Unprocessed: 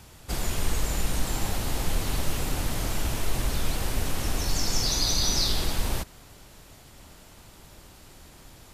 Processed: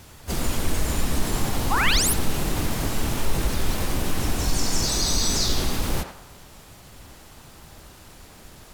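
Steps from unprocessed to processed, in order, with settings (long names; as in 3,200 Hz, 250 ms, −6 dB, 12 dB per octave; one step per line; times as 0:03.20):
dynamic equaliser 230 Hz, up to +5 dB, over −49 dBFS, Q 1.3
in parallel at −2 dB: brickwall limiter −19.5 dBFS, peak gain reduction 7.5 dB
on the sum: sound drawn into the spectrogram rise, 0:01.71–0:02.14, 740–12,000 Hz −21 dBFS
pitch vibrato 5.1 Hz 14 cents
pitch-shifted copies added +5 semitones −3 dB
on a send: feedback echo with a band-pass in the loop 91 ms, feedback 42%, band-pass 1,100 Hz, level −5 dB
on the sum: level −3.5 dB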